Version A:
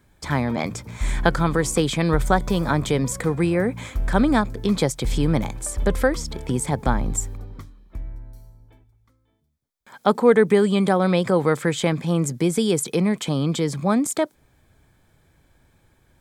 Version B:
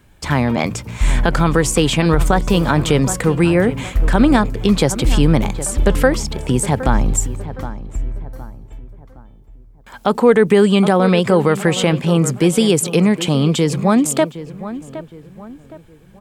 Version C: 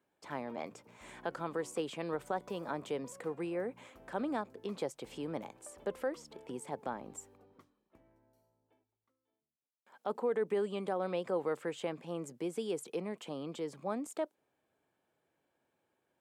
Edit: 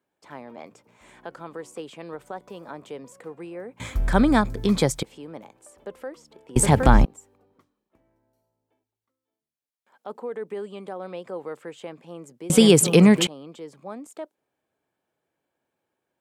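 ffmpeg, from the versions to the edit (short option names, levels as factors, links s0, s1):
-filter_complex "[1:a]asplit=2[s0][s1];[2:a]asplit=4[s2][s3][s4][s5];[s2]atrim=end=3.802[s6];[0:a]atrim=start=3.798:end=5.032[s7];[s3]atrim=start=5.028:end=6.562[s8];[s0]atrim=start=6.558:end=7.052[s9];[s4]atrim=start=7.048:end=12.502[s10];[s1]atrim=start=12.498:end=13.272[s11];[s5]atrim=start=13.268[s12];[s6][s7]acrossfade=d=0.004:c1=hsin:c2=hsin[s13];[s13][s8]acrossfade=d=0.004:c1=hsin:c2=hsin[s14];[s14][s9]acrossfade=d=0.004:c1=hsin:c2=hsin[s15];[s15][s10]acrossfade=d=0.004:c1=hsin:c2=hsin[s16];[s16][s11]acrossfade=d=0.004:c1=hsin:c2=hsin[s17];[s17][s12]acrossfade=d=0.004:c1=hsin:c2=hsin"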